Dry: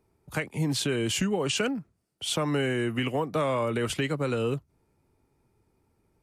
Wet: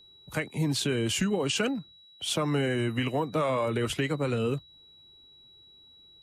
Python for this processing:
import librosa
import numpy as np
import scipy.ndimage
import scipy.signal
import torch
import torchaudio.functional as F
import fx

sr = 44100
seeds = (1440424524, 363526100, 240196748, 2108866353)

y = fx.spec_quant(x, sr, step_db=15)
y = y + 10.0 ** (-53.0 / 20.0) * np.sin(2.0 * np.pi * 3900.0 * np.arange(len(y)) / sr)